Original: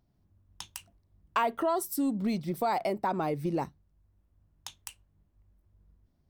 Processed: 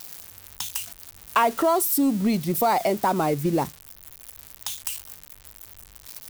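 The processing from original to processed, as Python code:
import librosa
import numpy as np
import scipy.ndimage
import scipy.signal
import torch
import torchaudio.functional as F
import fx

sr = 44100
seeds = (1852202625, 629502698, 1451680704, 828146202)

y = x + 0.5 * 10.0 ** (-32.0 / 20.0) * np.diff(np.sign(x), prepend=np.sign(x[:1]))
y = y * librosa.db_to_amplitude(7.5)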